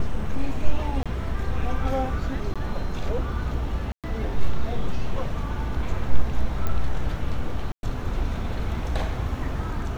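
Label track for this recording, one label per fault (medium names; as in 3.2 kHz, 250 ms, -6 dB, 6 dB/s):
1.030000	1.060000	dropout 26 ms
2.540000	2.560000	dropout 16 ms
3.920000	4.040000	dropout 117 ms
6.670000	6.670000	pop -13 dBFS
7.720000	7.830000	dropout 111 ms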